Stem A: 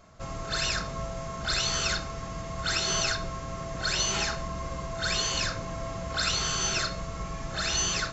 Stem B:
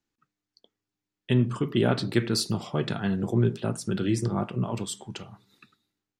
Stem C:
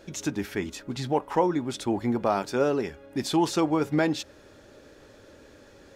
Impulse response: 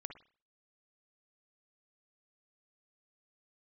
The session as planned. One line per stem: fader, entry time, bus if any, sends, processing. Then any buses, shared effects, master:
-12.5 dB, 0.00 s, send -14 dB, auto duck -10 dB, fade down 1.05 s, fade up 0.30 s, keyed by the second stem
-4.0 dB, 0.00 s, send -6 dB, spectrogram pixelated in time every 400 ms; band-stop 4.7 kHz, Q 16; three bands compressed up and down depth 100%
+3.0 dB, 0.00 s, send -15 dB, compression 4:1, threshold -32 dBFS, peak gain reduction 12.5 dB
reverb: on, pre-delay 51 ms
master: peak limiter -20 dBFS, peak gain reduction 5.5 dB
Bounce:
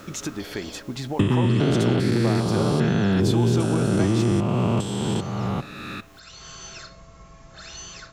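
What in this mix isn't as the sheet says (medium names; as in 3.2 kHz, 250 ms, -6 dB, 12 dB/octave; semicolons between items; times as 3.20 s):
stem B -4.0 dB -> +6.0 dB; master: missing peak limiter -20 dBFS, peak gain reduction 5.5 dB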